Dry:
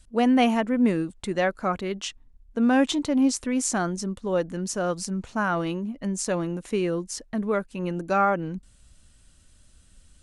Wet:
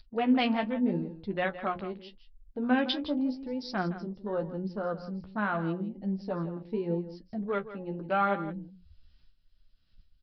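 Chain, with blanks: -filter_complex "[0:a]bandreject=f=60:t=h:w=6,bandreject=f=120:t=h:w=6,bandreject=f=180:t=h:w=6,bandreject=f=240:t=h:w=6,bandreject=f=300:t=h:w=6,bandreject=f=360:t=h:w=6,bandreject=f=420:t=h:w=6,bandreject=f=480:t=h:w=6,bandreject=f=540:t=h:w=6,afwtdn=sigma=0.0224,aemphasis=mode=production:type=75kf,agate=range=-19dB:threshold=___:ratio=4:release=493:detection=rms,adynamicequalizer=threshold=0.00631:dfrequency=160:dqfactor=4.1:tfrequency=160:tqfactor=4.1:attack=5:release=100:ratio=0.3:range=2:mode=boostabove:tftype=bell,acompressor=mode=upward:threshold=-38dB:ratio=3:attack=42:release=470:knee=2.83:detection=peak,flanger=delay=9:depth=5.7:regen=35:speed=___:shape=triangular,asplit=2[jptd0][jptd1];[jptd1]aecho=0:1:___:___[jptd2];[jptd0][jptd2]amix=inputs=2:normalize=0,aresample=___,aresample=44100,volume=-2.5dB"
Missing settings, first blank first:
-46dB, 0.83, 164, 0.211, 11025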